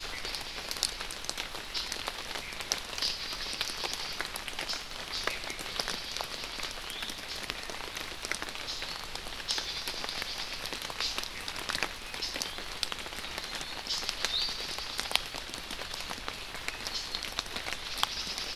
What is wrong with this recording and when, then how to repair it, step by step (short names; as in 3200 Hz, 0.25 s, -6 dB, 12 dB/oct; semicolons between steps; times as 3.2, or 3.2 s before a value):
crackle 57/s -44 dBFS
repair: de-click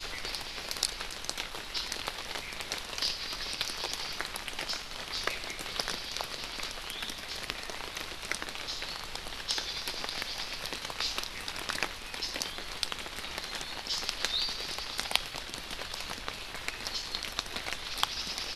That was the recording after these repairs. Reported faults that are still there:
none